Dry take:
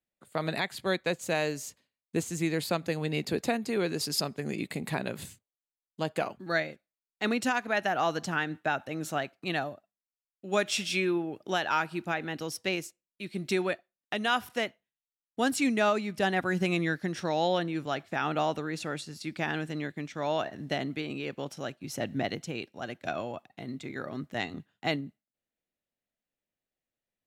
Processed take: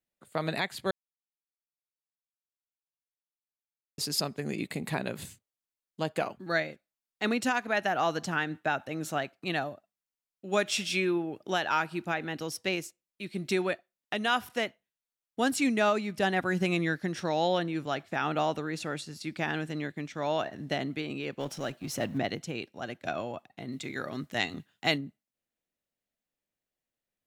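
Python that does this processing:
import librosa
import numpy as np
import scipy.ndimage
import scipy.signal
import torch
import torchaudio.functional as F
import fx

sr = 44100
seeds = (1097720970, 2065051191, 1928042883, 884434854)

y = fx.law_mismatch(x, sr, coded='mu', at=(21.39, 22.17), fade=0.02)
y = fx.high_shelf(y, sr, hz=2100.0, db=8.5, at=(23.72, 24.98))
y = fx.edit(y, sr, fx.silence(start_s=0.91, length_s=3.07), tone=tone)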